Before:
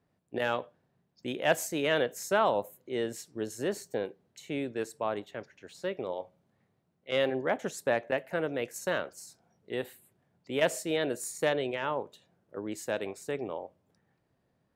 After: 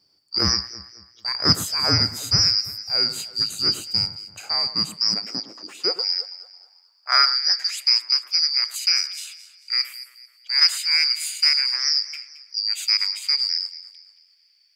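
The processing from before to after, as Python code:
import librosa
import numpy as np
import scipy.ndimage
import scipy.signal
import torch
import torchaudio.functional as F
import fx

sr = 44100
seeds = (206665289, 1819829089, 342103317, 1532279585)

p1 = fx.band_shuffle(x, sr, order='2341')
p2 = fx.echo_alternate(p1, sr, ms=110, hz=1900.0, feedback_pct=60, wet_db=-11.5)
p3 = fx.rider(p2, sr, range_db=5, speed_s=0.5)
p4 = p2 + (p3 * librosa.db_to_amplitude(2.0))
p5 = fx.filter_sweep_highpass(p4, sr, from_hz=95.0, to_hz=2200.0, start_s=4.34, end_s=7.83, q=3.1)
y = p5 * librosa.db_to_amplitude(2.0)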